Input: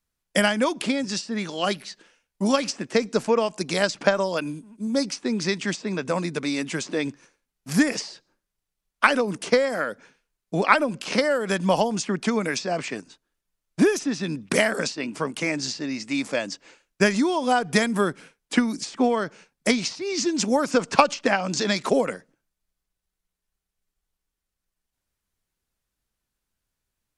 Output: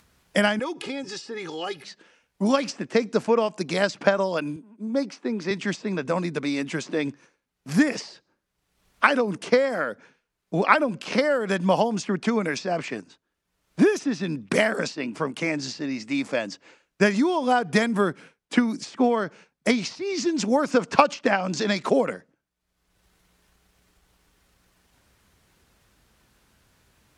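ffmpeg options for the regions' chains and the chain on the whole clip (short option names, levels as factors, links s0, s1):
-filter_complex "[0:a]asettb=1/sr,asplit=3[s0][s1][s2];[s0]atrim=end=0.594[s3];[s1]atrim=start=0.59:end=1.84,asetpts=PTS-STARTPTS,afade=t=in:d=0.004:c=qsin,afade=t=out:st=1.246:d=0.004:c=qsin,aecho=1:1:2.4:0.82,atrim=end_sample=55125,acompressor=threshold=0.0251:ratio=2:attack=3.2:release=140:knee=1:detection=peak[s4];[s2]atrim=start=1.836[s5];[s3][s4]acrossfade=d=0.004:c1=hsin:c2=qsin[s6];[s6][s5]acrossfade=d=0.004:c1=qsin:c2=hsin,asettb=1/sr,asplit=3[s7][s8][s9];[s7]atrim=end=4.564[s10];[s8]atrim=start=4.56:end=5.51,asetpts=PTS-STARTPTS,afade=t=in:d=0.004:c=qsin,afade=t=out:st=0.946:d=0.004:c=qsin,highpass=230,highshelf=f=3100:g=-10[s11];[s9]atrim=start=5.506[s12];[s10][s11]acrossfade=d=0.004:c1=hsin:c2=qsin[s13];[s13][s12]acrossfade=d=0.004:c1=qsin:c2=hsin,highpass=55,aemphasis=mode=reproduction:type=cd,acompressor=mode=upward:threshold=0.00708:ratio=2.5"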